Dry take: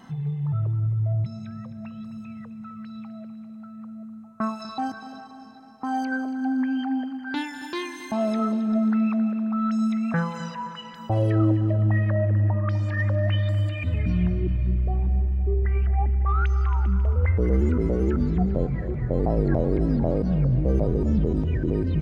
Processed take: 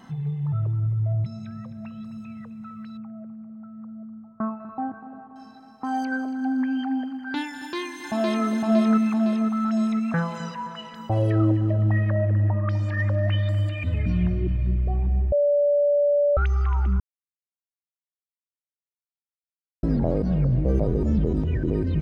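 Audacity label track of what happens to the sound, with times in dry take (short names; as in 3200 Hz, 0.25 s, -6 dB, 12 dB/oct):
2.970000	5.360000	Gaussian blur sigma 5.5 samples
7.520000	8.460000	echo throw 0.51 s, feedback 55%, level -1 dB
15.320000	16.370000	bleep 579 Hz -16.5 dBFS
17.000000	19.830000	mute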